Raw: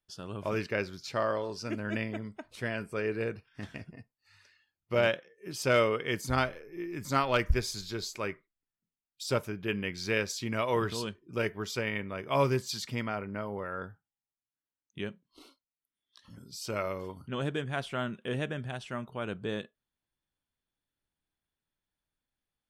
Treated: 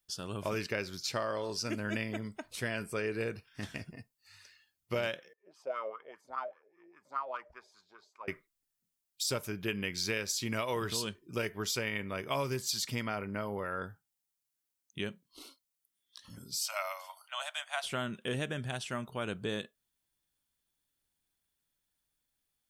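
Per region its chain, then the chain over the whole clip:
5.33–8.28 bell 120 Hz -14.5 dB 0.28 oct + wah 5 Hz 580–1200 Hz, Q 8.6
16.61–17.84 steep high-pass 610 Hz 96 dB/oct + notch 1700 Hz, Q 13
whole clip: high shelf 4100 Hz +12 dB; compressor 6:1, threshold -30 dBFS

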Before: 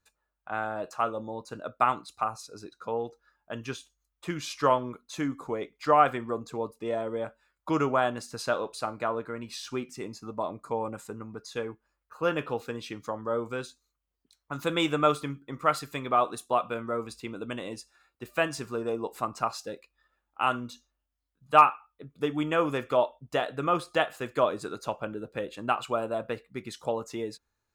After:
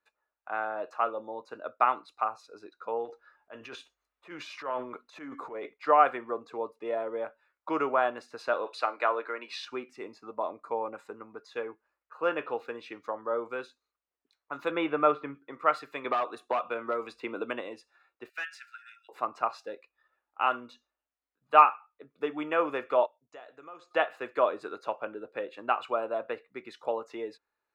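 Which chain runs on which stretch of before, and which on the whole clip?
3.05–5.74 compressor 2:1, threshold -32 dBFS + transient shaper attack -10 dB, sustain +8 dB
8.66–9.65 HPF 270 Hz 24 dB/oct + bell 3300 Hz +9 dB 2.9 oct
14.71–15.35 LPF 2500 Hz + low shelf 220 Hz +6.5 dB
16.04–17.61 hard clip -21.5 dBFS + three-band squash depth 100%
18.29–19.09 brick-wall FIR high-pass 1300 Hz + bell 3500 Hz -3 dB 0.24 oct + overloaded stage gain 30 dB
23.06–23.91 ladder low-pass 7300 Hz, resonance 75% + compressor 3:1, threshold -43 dBFS
whole clip: three-band isolator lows -22 dB, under 310 Hz, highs -20 dB, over 3500 Hz; notch 3200 Hz, Q 11

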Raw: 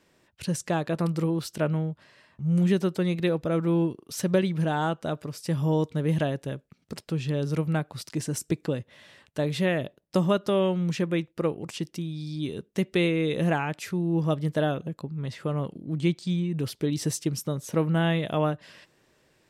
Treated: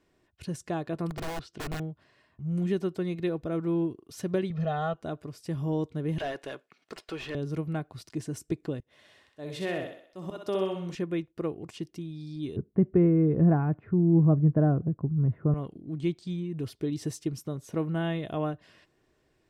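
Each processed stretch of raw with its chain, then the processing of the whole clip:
1.1–1.8 LPF 4800 Hz + low shelf 130 Hz -6.5 dB + wrapped overs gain 24.5 dB
4.5–4.94 LPF 5700 Hz 24 dB/oct + comb 1.6 ms, depth 88%
6.18–7.35 HPF 700 Hz 6 dB/oct + tilt shelf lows -3.5 dB, about 1300 Hz + overdrive pedal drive 25 dB, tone 1600 Hz, clips at -17 dBFS
8.8–10.95 tone controls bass -6 dB, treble +3 dB + auto swell 0.145 s + thinning echo 63 ms, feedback 50%, high-pass 260 Hz, level -4 dB
12.56–15.54 LPF 1500 Hz 24 dB/oct + bell 120 Hz +13.5 dB 2.5 oct
whole clip: tilt -1.5 dB/oct; comb 2.8 ms, depth 34%; gain -7 dB

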